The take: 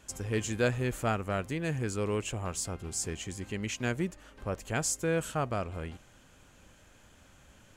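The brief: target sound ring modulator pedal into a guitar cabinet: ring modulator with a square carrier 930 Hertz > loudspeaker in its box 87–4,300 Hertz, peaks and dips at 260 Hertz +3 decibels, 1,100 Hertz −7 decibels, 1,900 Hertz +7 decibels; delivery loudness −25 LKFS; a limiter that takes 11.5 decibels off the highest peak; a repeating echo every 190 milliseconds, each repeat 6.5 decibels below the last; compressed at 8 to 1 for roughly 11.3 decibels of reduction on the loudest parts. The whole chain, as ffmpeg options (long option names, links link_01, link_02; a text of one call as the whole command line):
ffmpeg -i in.wav -af "acompressor=threshold=-34dB:ratio=8,alimiter=level_in=12dB:limit=-24dB:level=0:latency=1,volume=-12dB,aecho=1:1:190|380|570|760|950|1140:0.473|0.222|0.105|0.0491|0.0231|0.0109,aeval=exprs='val(0)*sgn(sin(2*PI*930*n/s))':channel_layout=same,highpass=87,equalizer=frequency=260:width_type=q:width=4:gain=3,equalizer=frequency=1100:width_type=q:width=4:gain=-7,equalizer=frequency=1900:width_type=q:width=4:gain=7,lowpass=frequency=4300:width=0.5412,lowpass=frequency=4300:width=1.3066,volume=20.5dB" out.wav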